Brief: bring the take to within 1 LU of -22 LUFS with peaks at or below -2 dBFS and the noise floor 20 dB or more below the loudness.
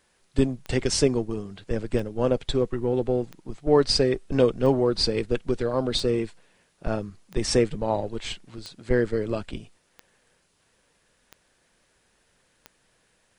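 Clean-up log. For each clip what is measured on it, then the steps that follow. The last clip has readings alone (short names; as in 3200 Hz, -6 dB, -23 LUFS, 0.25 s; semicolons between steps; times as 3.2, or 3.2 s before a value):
clicks 10; loudness -25.5 LUFS; peak -6.5 dBFS; loudness target -22.0 LUFS
-> de-click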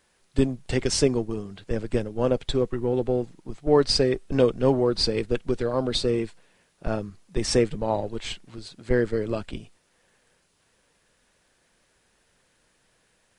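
clicks 0; loudness -25.5 LUFS; peak -6.5 dBFS; loudness target -22.0 LUFS
-> gain +3.5 dB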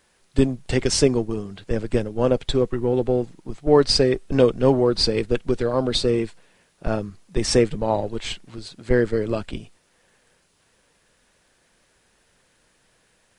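loudness -22.0 LUFS; peak -3.0 dBFS; noise floor -64 dBFS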